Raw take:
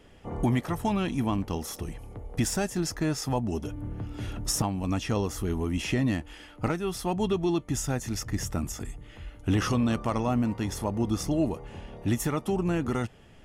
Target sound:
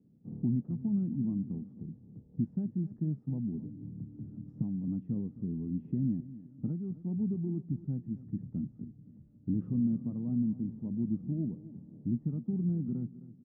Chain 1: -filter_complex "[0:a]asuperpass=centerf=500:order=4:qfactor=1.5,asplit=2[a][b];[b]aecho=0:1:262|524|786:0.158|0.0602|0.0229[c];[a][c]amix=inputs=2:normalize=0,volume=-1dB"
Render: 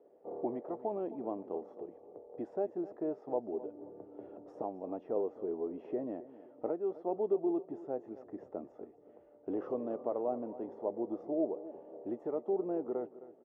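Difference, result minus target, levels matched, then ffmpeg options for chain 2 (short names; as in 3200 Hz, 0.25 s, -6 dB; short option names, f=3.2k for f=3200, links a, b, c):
500 Hz band +18.5 dB
-filter_complex "[0:a]asuperpass=centerf=180:order=4:qfactor=1.5,asplit=2[a][b];[b]aecho=0:1:262|524|786:0.158|0.0602|0.0229[c];[a][c]amix=inputs=2:normalize=0,volume=-1dB"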